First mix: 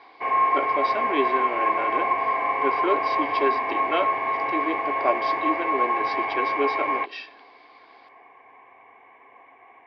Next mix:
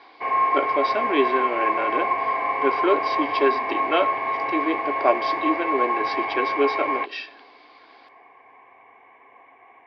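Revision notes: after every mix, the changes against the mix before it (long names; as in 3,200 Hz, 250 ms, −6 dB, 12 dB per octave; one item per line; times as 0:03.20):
speech +4.0 dB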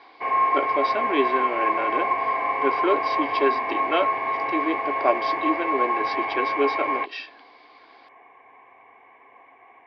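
reverb: off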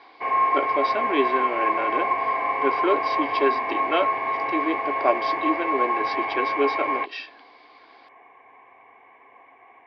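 nothing changed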